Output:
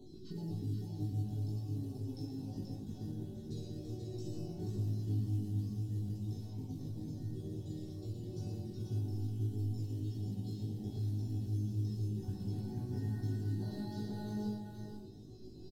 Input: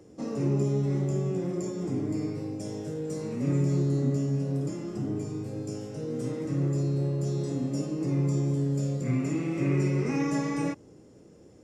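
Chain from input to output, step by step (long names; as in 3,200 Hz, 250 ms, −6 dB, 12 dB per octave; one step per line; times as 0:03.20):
time-frequency cells dropped at random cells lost 29%
double-tracking delay 14 ms −2.5 dB
convolution reverb RT60 0.55 s, pre-delay 5 ms, DRR 5.5 dB
downward compressor 2 to 1, threshold −44 dBFS, peak gain reduction 15 dB
floating-point word with a short mantissa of 4 bits
flat-topped bell 2,200 Hz −15 dB 1.3 octaves
tuned comb filter 500 Hz, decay 0.2 s, harmonics all, mix 90%
wrong playback speed 45 rpm record played at 33 rpm
low-shelf EQ 95 Hz +11.5 dB
multi-tap delay 114/483 ms −7.5/−5 dB
level +10.5 dB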